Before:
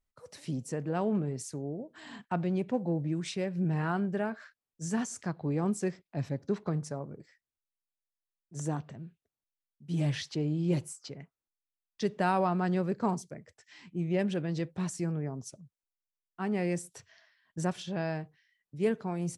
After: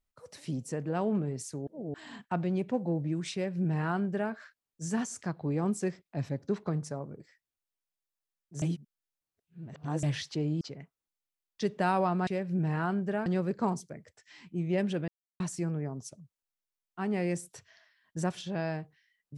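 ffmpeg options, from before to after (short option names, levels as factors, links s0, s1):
-filter_complex "[0:a]asplit=10[s0][s1][s2][s3][s4][s5][s6][s7][s8][s9];[s0]atrim=end=1.672[s10];[s1]atrim=start=1.668:end=1.942,asetpts=PTS-STARTPTS,areverse[s11];[s2]atrim=start=1.938:end=8.622[s12];[s3]atrim=start=8.618:end=10.032,asetpts=PTS-STARTPTS,areverse[s13];[s4]atrim=start=10.028:end=10.612[s14];[s5]atrim=start=11.008:end=12.672[s15];[s6]atrim=start=3.328:end=4.322[s16];[s7]atrim=start=12.668:end=14.49,asetpts=PTS-STARTPTS,afade=t=out:st=1.818:d=0.004:c=hsin[s17];[s8]atrim=start=14.49:end=14.81,asetpts=PTS-STARTPTS,volume=0[s18];[s9]atrim=start=14.81,asetpts=PTS-STARTPTS,afade=t=in:d=0.004:c=hsin[s19];[s10][s11]acrossfade=d=0.004:c1=hsin:c2=hsin[s20];[s20][s12]acrossfade=d=0.004:c1=hsin:c2=hsin[s21];[s21][s13]acrossfade=d=0.004:c1=hsin:c2=hsin[s22];[s22][s14]acrossfade=d=0.004:c1=hsin:c2=hsin[s23];[s23][s15]acrossfade=d=0.004:c1=hsin:c2=hsin[s24];[s24][s16]acrossfade=d=0.004:c1=hsin:c2=hsin[s25];[s17][s18][s19]concat=n=3:v=0:a=1[s26];[s25][s26]acrossfade=d=0.004:c1=hsin:c2=hsin"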